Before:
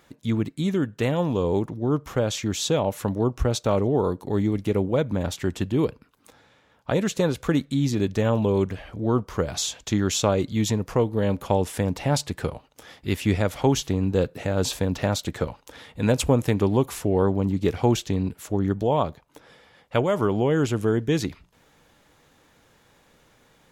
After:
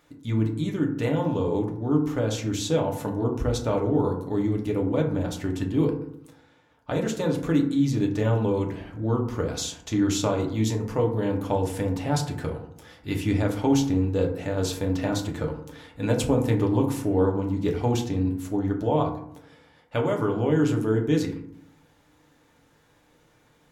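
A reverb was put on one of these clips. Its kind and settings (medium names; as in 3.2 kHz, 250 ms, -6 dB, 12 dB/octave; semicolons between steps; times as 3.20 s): FDN reverb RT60 0.69 s, low-frequency decay 1.4×, high-frequency decay 0.4×, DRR 1 dB; trim -5.5 dB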